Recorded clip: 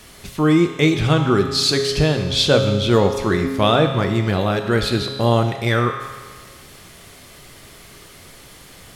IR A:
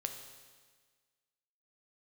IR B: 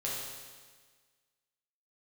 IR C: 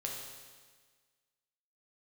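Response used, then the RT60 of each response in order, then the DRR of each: A; 1.5, 1.5, 1.5 s; 4.5, -6.5, -1.5 dB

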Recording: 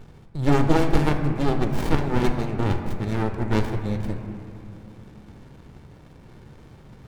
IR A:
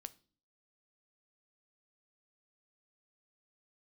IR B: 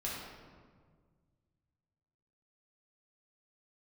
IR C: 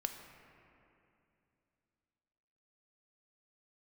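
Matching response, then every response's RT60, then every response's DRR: C; 0.40, 1.7, 2.7 s; 12.5, -6.0, 5.0 dB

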